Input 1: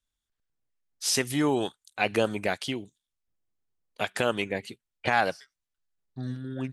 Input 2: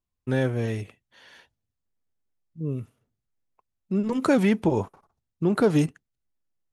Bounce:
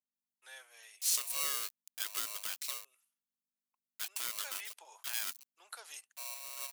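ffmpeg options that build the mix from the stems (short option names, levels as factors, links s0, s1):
-filter_complex "[0:a]alimiter=limit=0.168:level=0:latency=1:release=28,acrusher=bits=6:mix=0:aa=0.000001,aeval=exprs='val(0)*sgn(sin(2*PI*830*n/s))':c=same,volume=0.708[s0];[1:a]highpass=f=670:w=0.5412,highpass=f=670:w=1.3066,adelay=150,volume=0.531[s1];[s0][s1]amix=inputs=2:normalize=0,aeval=exprs='val(0)+0.000562*(sin(2*PI*50*n/s)+sin(2*PI*2*50*n/s)/2+sin(2*PI*3*50*n/s)/3+sin(2*PI*4*50*n/s)/4+sin(2*PI*5*50*n/s)/5)':c=same,highpass=f=200:w=0.5412,highpass=f=200:w=1.3066,aderivative"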